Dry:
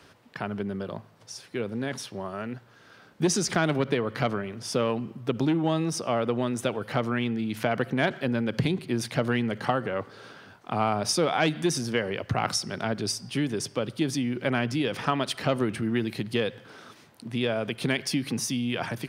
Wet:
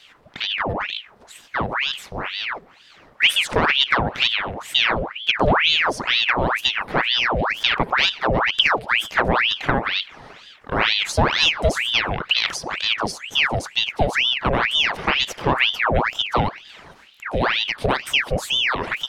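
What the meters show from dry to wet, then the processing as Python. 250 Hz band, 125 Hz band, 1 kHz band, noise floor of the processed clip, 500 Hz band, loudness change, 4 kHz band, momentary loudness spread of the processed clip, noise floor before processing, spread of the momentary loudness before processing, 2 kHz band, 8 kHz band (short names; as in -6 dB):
-2.5 dB, +1.5 dB, +9.0 dB, -50 dBFS, +3.0 dB, +8.5 dB, +16.0 dB, 9 LU, -55 dBFS, 10 LU, +13.5 dB, -1.0 dB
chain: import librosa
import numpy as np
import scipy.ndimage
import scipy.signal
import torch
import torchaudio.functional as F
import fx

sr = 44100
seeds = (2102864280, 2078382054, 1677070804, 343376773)

y = fx.tilt_shelf(x, sr, db=5.5, hz=1300.0)
y = fx.ring_lfo(y, sr, carrier_hz=1800.0, swing_pct=85, hz=2.1)
y = y * 10.0 ** (5.5 / 20.0)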